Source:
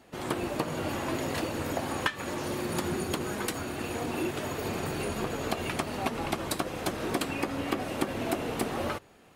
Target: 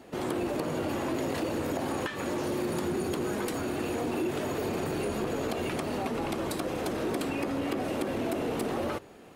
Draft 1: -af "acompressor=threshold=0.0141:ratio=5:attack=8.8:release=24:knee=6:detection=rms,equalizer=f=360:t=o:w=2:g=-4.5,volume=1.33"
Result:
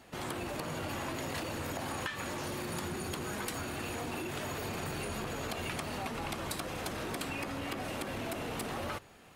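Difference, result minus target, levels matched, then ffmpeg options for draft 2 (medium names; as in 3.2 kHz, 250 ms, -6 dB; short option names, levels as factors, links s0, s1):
500 Hz band -3.5 dB
-af "acompressor=threshold=0.0141:ratio=5:attack=8.8:release=24:knee=6:detection=rms,equalizer=f=360:t=o:w=2:g=6.5,volume=1.33"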